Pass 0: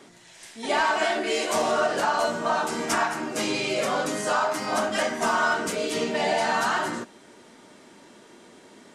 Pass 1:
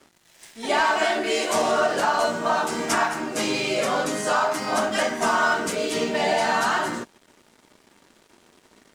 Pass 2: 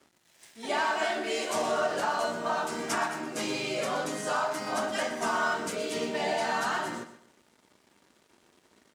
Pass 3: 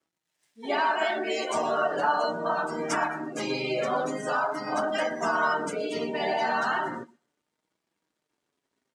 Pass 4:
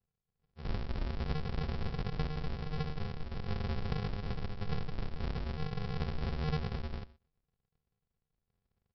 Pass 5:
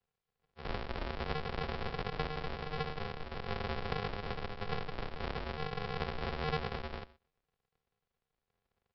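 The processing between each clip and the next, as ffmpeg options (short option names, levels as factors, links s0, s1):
-af "aeval=exprs='sgn(val(0))*max(abs(val(0))-0.00316,0)':c=same,volume=1.33"
-af "highpass=46,aecho=1:1:122|244|366:0.224|0.0672|0.0201,volume=0.422"
-af "afftdn=nr=20:nf=-37,flanger=delay=6:depth=2:regen=50:speed=0.38:shape=triangular,volume=2.24"
-af "afftfilt=real='re*(1-between(b*sr/4096,780,3100))':imag='im*(1-between(b*sr/4096,780,3100))':win_size=4096:overlap=0.75,acompressor=threshold=0.0282:ratio=4,aresample=11025,acrusher=samples=36:mix=1:aa=0.000001,aresample=44100"
-filter_complex "[0:a]acrossover=split=360 4600:gain=0.251 1 0.224[s0][s1][s2];[s0][s1][s2]amix=inputs=3:normalize=0,volume=2"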